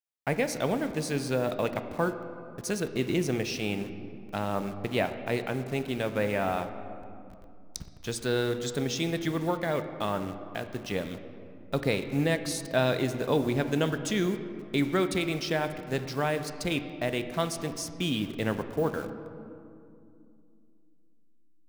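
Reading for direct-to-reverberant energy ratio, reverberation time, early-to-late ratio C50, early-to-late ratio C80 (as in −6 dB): 8.5 dB, 2.5 s, 10.0 dB, 11.0 dB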